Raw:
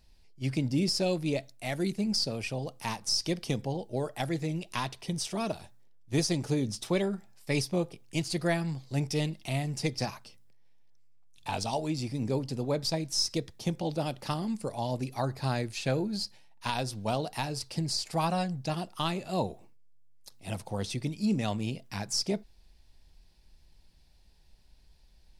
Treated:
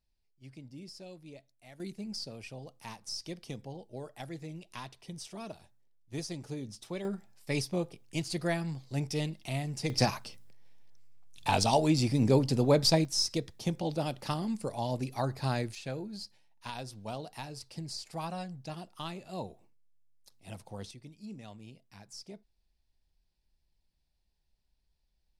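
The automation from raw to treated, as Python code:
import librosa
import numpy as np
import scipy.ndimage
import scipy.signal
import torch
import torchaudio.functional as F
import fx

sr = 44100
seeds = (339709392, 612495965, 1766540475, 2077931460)

y = fx.gain(x, sr, db=fx.steps((0.0, -19.5), (1.8, -10.5), (7.05, -3.0), (9.9, 6.0), (13.05, -1.0), (15.75, -9.0), (20.91, -17.0)))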